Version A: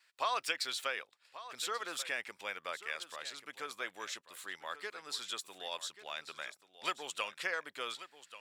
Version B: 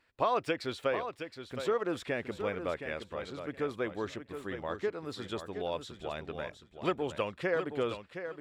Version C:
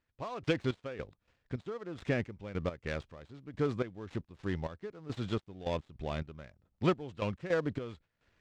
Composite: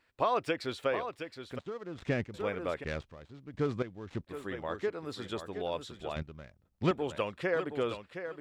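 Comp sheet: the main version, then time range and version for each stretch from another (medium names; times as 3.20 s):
B
1.59–2.34 s: from C
2.84–4.27 s: from C
6.16–6.91 s: from C
not used: A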